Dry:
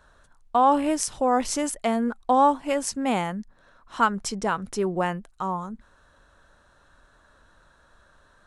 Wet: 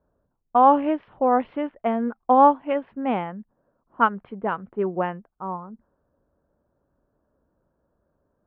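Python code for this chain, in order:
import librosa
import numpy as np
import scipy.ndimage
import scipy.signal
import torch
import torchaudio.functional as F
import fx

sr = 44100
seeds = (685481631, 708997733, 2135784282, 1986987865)

y = fx.highpass(x, sr, hz=180.0, slope=6)
y = fx.env_lowpass(y, sr, base_hz=450.0, full_db=-18.0)
y = scipy.signal.sosfilt(scipy.signal.butter(8, 3300.0, 'lowpass', fs=sr, output='sos'), y)
y = fx.high_shelf(y, sr, hz=2300.0, db=-12.0)
y = fx.upward_expand(y, sr, threshold_db=-33.0, expansion=1.5)
y = y * 10.0 ** (6.0 / 20.0)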